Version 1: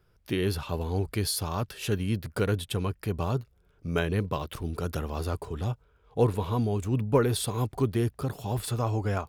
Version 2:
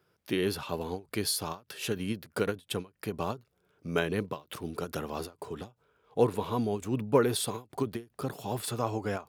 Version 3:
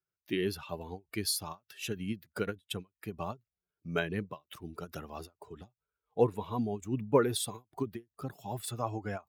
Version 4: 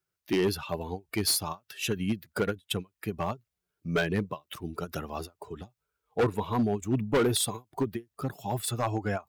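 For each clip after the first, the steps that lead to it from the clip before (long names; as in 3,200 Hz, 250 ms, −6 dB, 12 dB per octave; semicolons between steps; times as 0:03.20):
high-pass filter 180 Hz 12 dB per octave; every ending faded ahead of time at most 260 dB per second
spectral dynamics exaggerated over time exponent 1.5
hard clipping −27.5 dBFS, distortion −7 dB; level +7 dB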